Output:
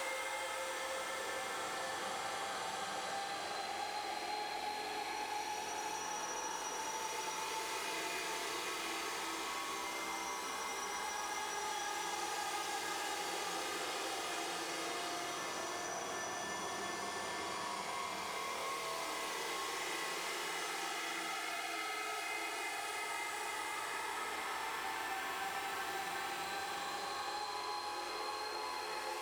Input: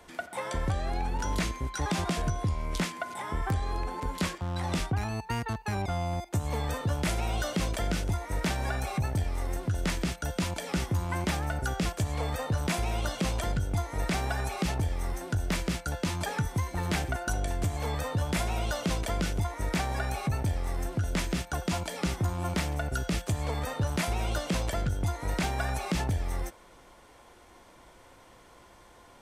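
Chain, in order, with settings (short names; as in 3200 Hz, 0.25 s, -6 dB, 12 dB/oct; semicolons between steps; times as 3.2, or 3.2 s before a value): minimum comb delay 2.4 ms; HPF 490 Hz 12 dB/oct; level quantiser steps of 12 dB; limiter -31 dBFS, peak gain reduction 9.5 dB; Paulstretch 8.4×, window 0.50 s, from 0.43; on a send at -1.5 dB: reverb RT60 0.75 s, pre-delay 35 ms; on the sum: three-band squash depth 100%; gain +1.5 dB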